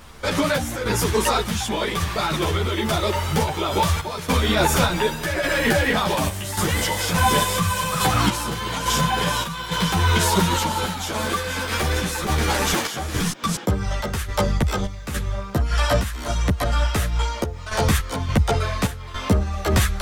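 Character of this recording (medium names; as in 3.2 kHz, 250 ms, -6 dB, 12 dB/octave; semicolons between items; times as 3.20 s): random-step tremolo, depth 75%; a quantiser's noise floor 12-bit, dither none; a shimmering, thickened sound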